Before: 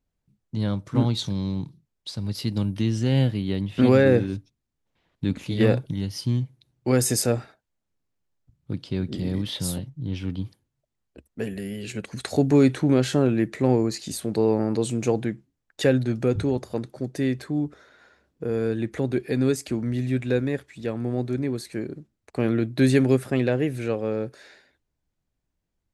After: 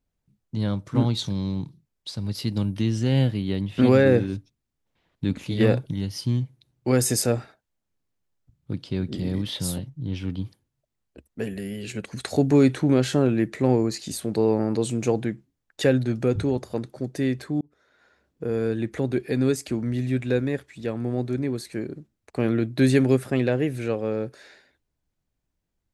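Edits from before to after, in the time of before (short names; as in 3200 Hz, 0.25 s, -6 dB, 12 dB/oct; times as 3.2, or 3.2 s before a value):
17.61–18.44 fade in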